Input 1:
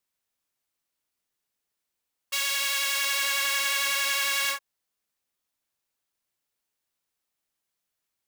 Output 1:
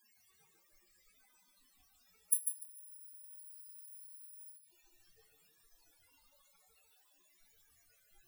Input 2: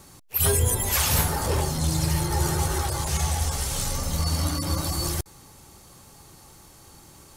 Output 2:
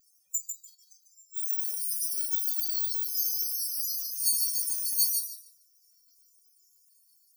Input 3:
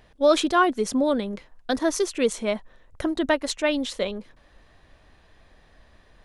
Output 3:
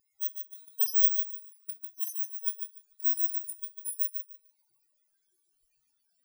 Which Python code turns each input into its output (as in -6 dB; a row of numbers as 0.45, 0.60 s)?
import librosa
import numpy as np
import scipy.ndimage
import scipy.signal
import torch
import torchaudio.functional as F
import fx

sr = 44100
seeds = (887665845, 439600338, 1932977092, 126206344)

p1 = fx.bit_reversed(x, sr, seeds[0], block=16)
p2 = scipy.signal.sosfilt(scipy.signal.cheby2(4, 70, 970.0, 'highpass', fs=sr, output='sos'), p1)
p3 = fx.quant_dither(p2, sr, seeds[1], bits=8, dither='triangular')
p4 = p2 + (p3 * 10.0 ** (-5.0 / 20.0))
p5 = fx.spec_topn(p4, sr, count=32)
p6 = fx.gate_flip(p5, sr, shuts_db=-19.0, range_db=-31)
p7 = p6 + fx.echo_feedback(p6, sr, ms=147, feedback_pct=33, wet_db=-4.5, dry=0)
p8 = fx.room_shoebox(p7, sr, seeds[2], volume_m3=31.0, walls='mixed', distance_m=0.49)
p9 = fx.spectral_expand(p8, sr, expansion=1.5)
y = p9 * 10.0 ** (5.5 / 20.0)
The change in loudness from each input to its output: -16.0, -2.5, -3.5 LU